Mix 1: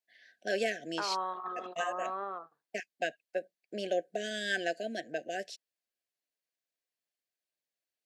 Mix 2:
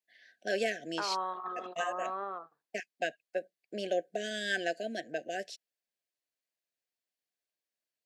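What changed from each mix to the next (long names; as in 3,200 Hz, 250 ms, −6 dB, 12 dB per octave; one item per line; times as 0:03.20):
nothing changed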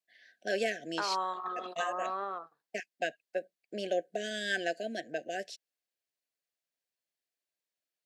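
second voice: remove high-frequency loss of the air 310 metres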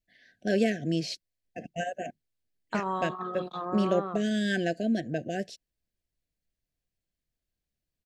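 second voice: entry +1.75 s
master: remove high-pass filter 570 Hz 12 dB per octave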